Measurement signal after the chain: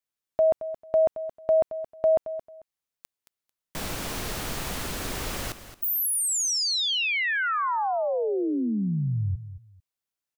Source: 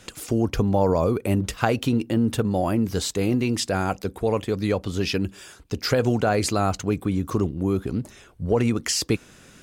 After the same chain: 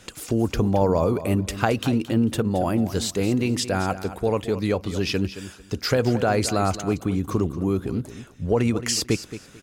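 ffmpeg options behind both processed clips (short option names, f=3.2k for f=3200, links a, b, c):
-af "aecho=1:1:222|444:0.224|0.047"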